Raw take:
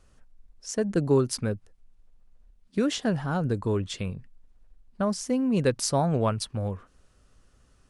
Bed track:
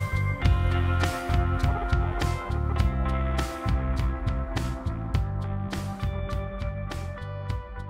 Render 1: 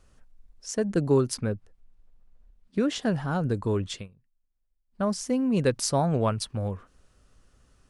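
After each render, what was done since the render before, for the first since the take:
0:01.34–0:02.96: high-shelf EQ 4,200 Hz −7.5 dB
0:03.93–0:05.04: duck −22 dB, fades 0.15 s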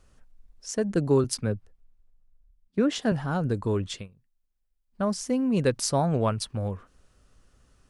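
0:01.24–0:03.12: multiband upward and downward expander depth 40%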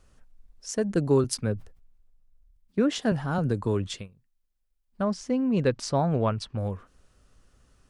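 0:01.54–0:02.83: level that may fall only so fast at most 91 dB per second
0:03.38–0:03.90: multiband upward and downward compressor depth 40%
0:05.03–0:06.58: high-frequency loss of the air 100 metres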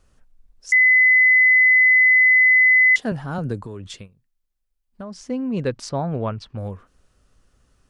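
0:00.72–0:02.96: beep over 2,020 Hz −10.5 dBFS
0:03.59–0:05.17: downward compressor, threshold −30 dBFS
0:05.89–0:06.46: high-frequency loss of the air 98 metres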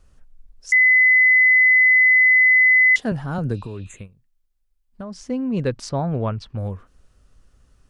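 0:03.56–0:03.99: healed spectral selection 2,400–6,200 Hz both
low-shelf EQ 110 Hz +7 dB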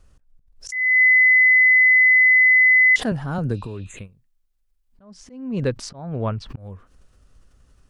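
volume swells 347 ms
background raised ahead of every attack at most 120 dB per second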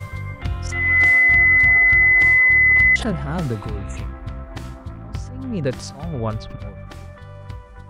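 mix in bed track −3.5 dB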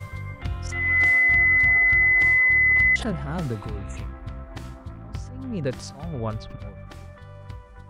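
level −4.5 dB

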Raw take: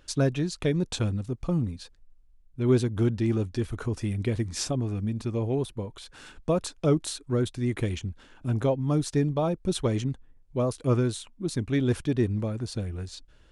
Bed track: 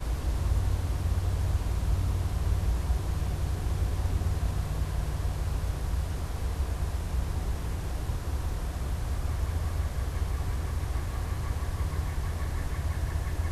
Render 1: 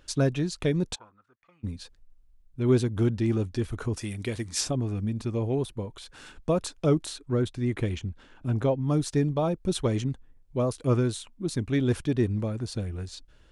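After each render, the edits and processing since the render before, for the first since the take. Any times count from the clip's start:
0:00.94–0:01.63: resonant band-pass 830 Hz → 2,600 Hz, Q 8.5
0:03.96–0:04.61: spectral tilt +2 dB per octave
0:07.06–0:08.89: high-shelf EQ 6,100 Hz −8 dB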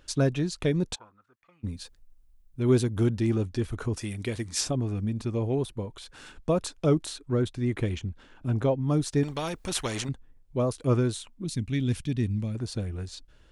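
0:01.71–0:03.30: high-shelf EQ 9,100 Hz +10 dB
0:09.23–0:10.09: every bin compressed towards the loudest bin 2 to 1
0:11.44–0:12.55: flat-topped bell 720 Hz −10.5 dB 2.6 octaves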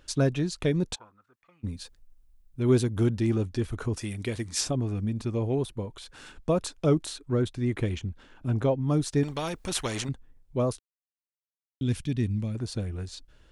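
0:10.79–0:11.81: silence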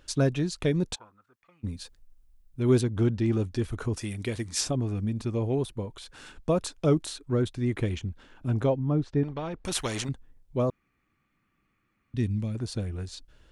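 0:02.81–0:03.33: high-frequency loss of the air 78 metres
0:08.79–0:09.65: head-to-tape spacing loss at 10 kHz 34 dB
0:10.70–0:12.14: fill with room tone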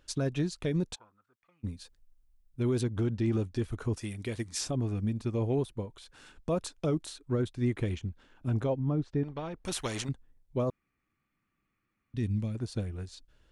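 brickwall limiter −20.5 dBFS, peak gain reduction 9 dB
expander for the loud parts 1.5 to 1, over −39 dBFS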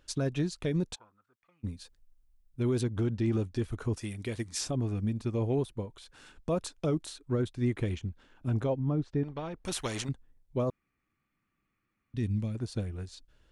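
no processing that can be heard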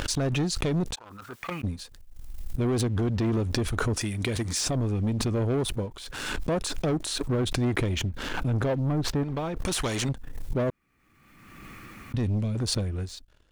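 leveller curve on the samples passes 2
background raised ahead of every attack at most 35 dB per second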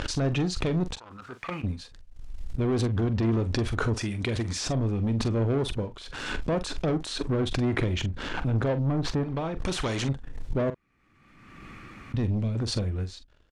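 high-frequency loss of the air 77 metres
double-tracking delay 44 ms −12 dB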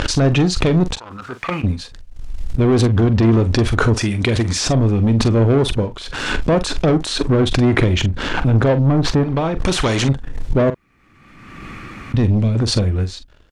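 level +11.5 dB
brickwall limiter −2 dBFS, peak gain reduction 2 dB

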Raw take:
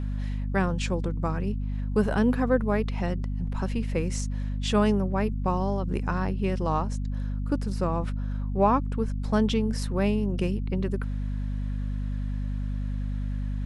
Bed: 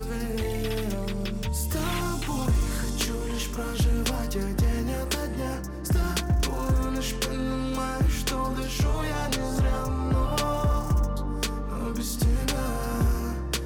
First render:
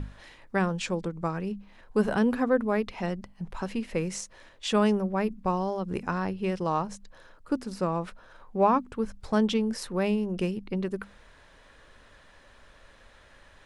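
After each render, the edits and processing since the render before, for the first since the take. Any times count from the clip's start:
mains-hum notches 50/100/150/200/250 Hz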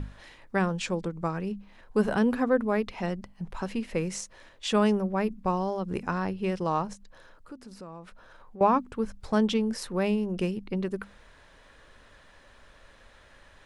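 0:06.93–0:08.61: downward compressor 2.5 to 1, threshold −47 dBFS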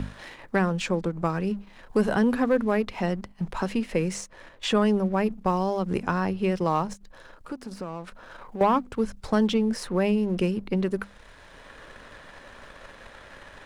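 leveller curve on the samples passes 1
multiband upward and downward compressor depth 40%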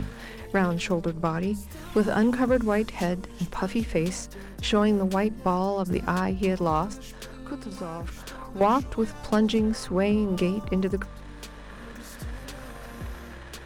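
mix in bed −13.5 dB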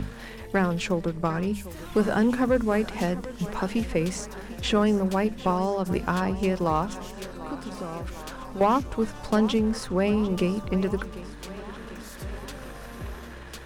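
feedback echo with a high-pass in the loop 747 ms, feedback 70%, high-pass 170 Hz, level −15.5 dB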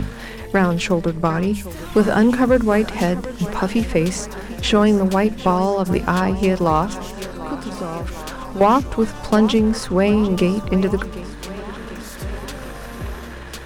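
level +7.5 dB
brickwall limiter −3 dBFS, peak gain reduction 1 dB

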